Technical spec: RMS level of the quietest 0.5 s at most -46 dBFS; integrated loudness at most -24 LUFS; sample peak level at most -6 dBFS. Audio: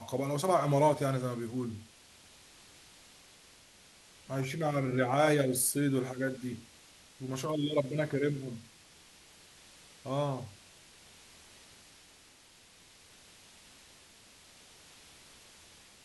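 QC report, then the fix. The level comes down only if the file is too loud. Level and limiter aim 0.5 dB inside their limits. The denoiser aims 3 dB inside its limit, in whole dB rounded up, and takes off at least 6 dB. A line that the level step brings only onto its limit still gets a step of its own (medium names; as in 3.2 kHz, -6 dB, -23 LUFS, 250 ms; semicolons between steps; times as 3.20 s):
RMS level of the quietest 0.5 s -59 dBFS: pass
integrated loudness -31.5 LUFS: pass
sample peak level -14.5 dBFS: pass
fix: none needed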